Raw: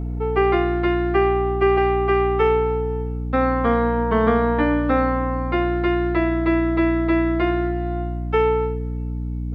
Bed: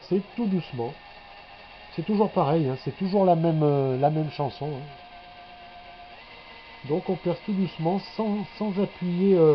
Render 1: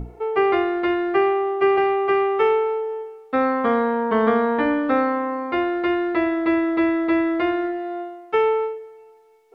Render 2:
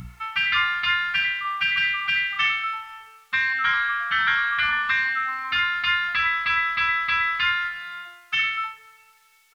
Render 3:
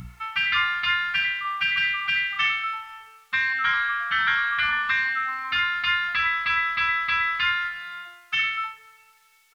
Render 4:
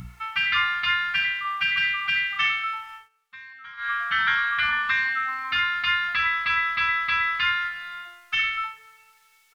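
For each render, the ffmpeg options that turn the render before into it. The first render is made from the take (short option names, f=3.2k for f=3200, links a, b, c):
-af "bandreject=f=60:t=h:w=6,bandreject=f=120:t=h:w=6,bandreject=f=180:t=h:w=6,bandreject=f=240:t=h:w=6,bandreject=f=300:t=h:w=6,bandreject=f=360:t=h:w=6"
-af "afftfilt=real='re*lt(hypot(re,im),0.251)':imag='im*lt(hypot(re,im),0.251)':win_size=1024:overlap=0.75,firequalizer=gain_entry='entry(170,0);entry(350,-29);entry(520,-28);entry(1200,9);entry(3200,14)':delay=0.05:min_phase=1"
-af "volume=-1dB"
-filter_complex "[0:a]asplit=3[a][b][c];[a]afade=t=out:st=7.78:d=0.02[d];[b]asubboost=boost=3.5:cutoff=56,afade=t=in:st=7.78:d=0.02,afade=t=out:st=8.65:d=0.02[e];[c]afade=t=in:st=8.65:d=0.02[f];[d][e][f]amix=inputs=3:normalize=0,asplit=3[g][h][i];[g]atrim=end=3.09,asetpts=PTS-STARTPTS,afade=t=out:st=2.95:d=0.14:silence=0.105925[j];[h]atrim=start=3.09:end=3.77,asetpts=PTS-STARTPTS,volume=-19.5dB[k];[i]atrim=start=3.77,asetpts=PTS-STARTPTS,afade=t=in:d=0.14:silence=0.105925[l];[j][k][l]concat=n=3:v=0:a=1"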